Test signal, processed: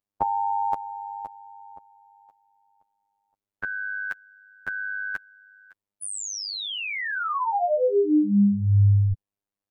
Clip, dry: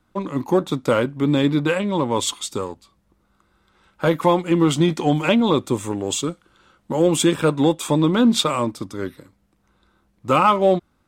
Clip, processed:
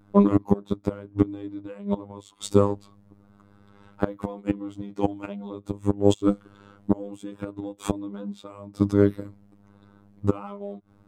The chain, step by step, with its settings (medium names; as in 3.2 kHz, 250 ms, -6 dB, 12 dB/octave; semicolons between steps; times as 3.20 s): inverted gate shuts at -13 dBFS, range -26 dB; robot voice 101 Hz; tilt shelf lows +8 dB, about 1.1 kHz; trim +4.5 dB